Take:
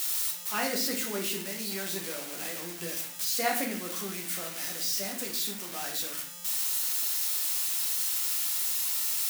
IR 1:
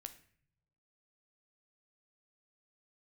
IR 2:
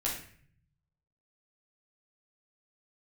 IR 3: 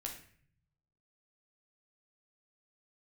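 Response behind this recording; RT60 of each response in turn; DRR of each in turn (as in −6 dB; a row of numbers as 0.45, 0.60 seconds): 3; non-exponential decay, 0.50 s, 0.50 s; 8.0, −5.5, 0.0 decibels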